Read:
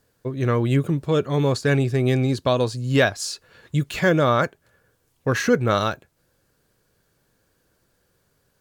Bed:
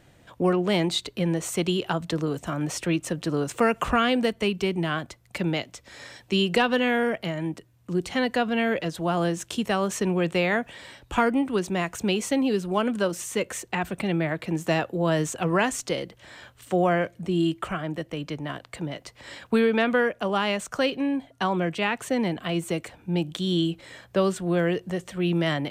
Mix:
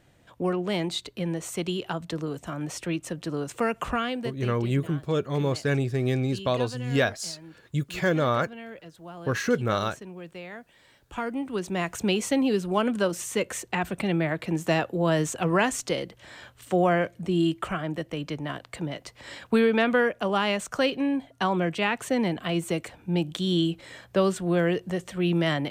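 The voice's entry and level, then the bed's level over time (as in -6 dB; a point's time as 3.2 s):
4.00 s, -5.5 dB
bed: 3.91 s -4.5 dB
4.73 s -17 dB
10.67 s -17 dB
11.91 s 0 dB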